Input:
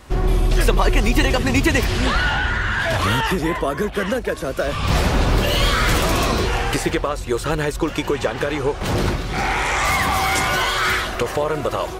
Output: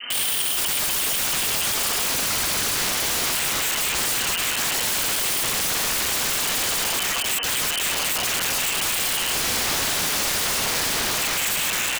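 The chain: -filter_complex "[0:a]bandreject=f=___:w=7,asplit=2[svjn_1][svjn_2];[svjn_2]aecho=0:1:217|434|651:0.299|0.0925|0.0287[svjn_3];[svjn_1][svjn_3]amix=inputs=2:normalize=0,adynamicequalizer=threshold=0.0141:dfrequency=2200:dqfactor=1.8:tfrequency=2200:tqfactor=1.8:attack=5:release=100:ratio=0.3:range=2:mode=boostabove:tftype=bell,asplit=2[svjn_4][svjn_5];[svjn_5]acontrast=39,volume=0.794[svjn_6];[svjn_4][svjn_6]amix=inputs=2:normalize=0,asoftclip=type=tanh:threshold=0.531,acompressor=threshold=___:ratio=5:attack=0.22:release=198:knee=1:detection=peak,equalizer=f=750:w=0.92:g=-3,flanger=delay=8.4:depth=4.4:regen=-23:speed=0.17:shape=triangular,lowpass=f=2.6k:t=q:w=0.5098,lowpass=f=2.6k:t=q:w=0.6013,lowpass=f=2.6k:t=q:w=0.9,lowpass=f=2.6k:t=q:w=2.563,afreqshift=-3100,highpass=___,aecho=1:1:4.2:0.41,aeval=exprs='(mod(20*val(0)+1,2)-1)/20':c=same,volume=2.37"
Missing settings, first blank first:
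530, 0.112, 160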